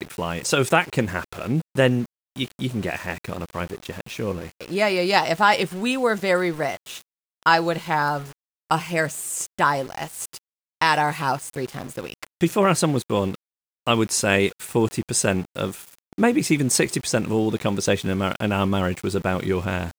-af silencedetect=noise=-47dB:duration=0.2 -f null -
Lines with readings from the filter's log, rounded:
silence_start: 2.06
silence_end: 2.36 | silence_duration: 0.30
silence_start: 7.02
silence_end: 7.43 | silence_duration: 0.41
silence_start: 8.33
silence_end: 8.70 | silence_duration: 0.37
silence_start: 10.39
silence_end: 10.81 | silence_duration: 0.43
silence_start: 13.35
silence_end: 13.86 | silence_duration: 0.51